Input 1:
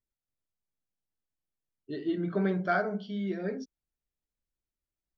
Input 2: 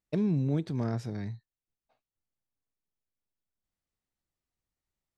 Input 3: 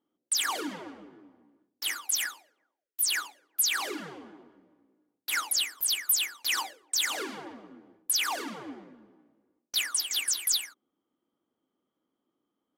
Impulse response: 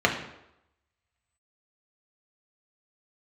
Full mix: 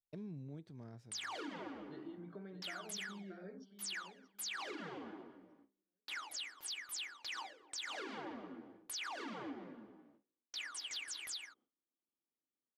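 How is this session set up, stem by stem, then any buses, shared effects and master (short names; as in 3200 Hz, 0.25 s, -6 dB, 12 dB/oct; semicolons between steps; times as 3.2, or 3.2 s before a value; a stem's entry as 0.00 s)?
-14.5 dB, 0.00 s, no bus, no send, echo send -10 dB, compressor 12:1, threshold -32 dBFS, peak gain reduction 10 dB
-17.0 dB, 0.00 s, bus A, no send, no echo send, auto duck -9 dB, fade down 1.85 s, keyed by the first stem
+1.0 dB, 0.80 s, bus A, no send, no echo send, LPF 4400 Hz 12 dB/oct; notches 50/100/150/200/250/300/350/400/450/500 Hz
bus A: 0.0 dB, gate with hold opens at -56 dBFS; compressor 3:1, threshold -43 dBFS, peak gain reduction 13.5 dB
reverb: off
echo: feedback echo 0.626 s, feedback 26%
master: limiter -35.5 dBFS, peak gain reduction 6.5 dB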